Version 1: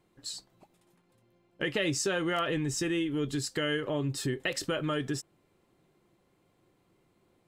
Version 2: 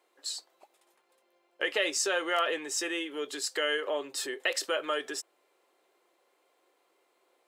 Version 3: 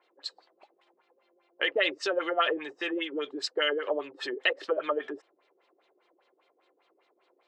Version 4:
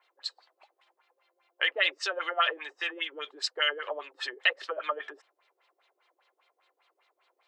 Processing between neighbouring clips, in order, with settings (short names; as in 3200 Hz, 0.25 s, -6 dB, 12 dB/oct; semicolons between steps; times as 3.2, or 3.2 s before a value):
HPF 440 Hz 24 dB/oct; gain +3 dB
LFO low-pass sine 5 Hz 310–4300 Hz
HPF 880 Hz 12 dB/oct; gain +2 dB